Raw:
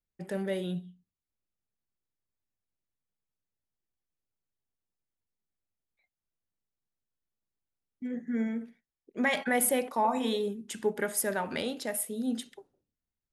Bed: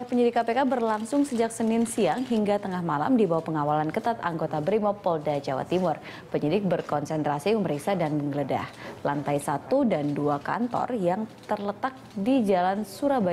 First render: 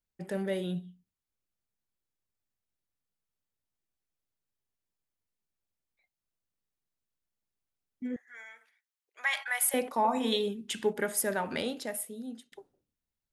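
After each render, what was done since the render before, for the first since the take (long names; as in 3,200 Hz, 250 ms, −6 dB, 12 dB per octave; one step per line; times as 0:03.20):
0:08.16–0:09.74: high-pass filter 950 Hz 24 dB per octave
0:10.32–0:10.93: parametric band 3,100 Hz +9 dB 1.2 octaves
0:11.66–0:12.52: fade out, to −22.5 dB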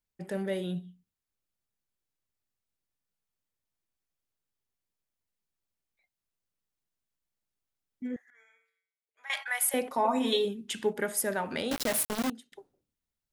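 0:08.30–0:09.30: tuned comb filter 90 Hz, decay 0.58 s, harmonics odd, mix 90%
0:09.90–0:10.45: comb filter 7.4 ms, depth 61%
0:11.71–0:12.30: log-companded quantiser 2 bits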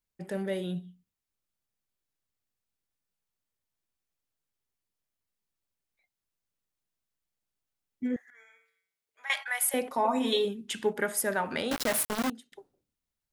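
0:08.03–0:09.33: clip gain +5 dB
0:10.36–0:12.29: dynamic equaliser 1,300 Hz, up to +4 dB, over −42 dBFS, Q 0.87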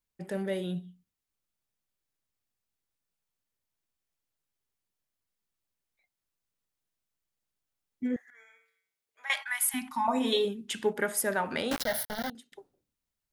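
0:09.42–0:10.08: elliptic band-stop filter 280–850 Hz
0:11.82–0:12.35: phaser with its sweep stopped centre 1,700 Hz, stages 8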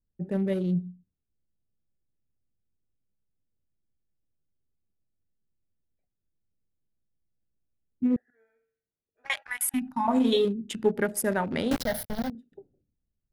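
adaptive Wiener filter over 41 samples
low-shelf EQ 340 Hz +11.5 dB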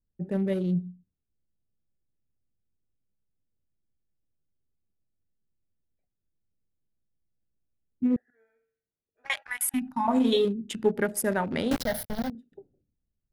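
no processing that can be heard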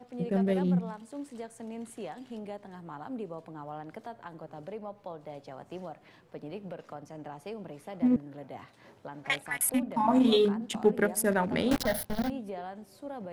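mix in bed −16.5 dB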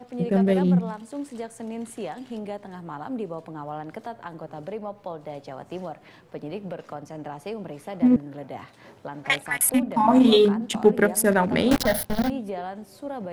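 level +7 dB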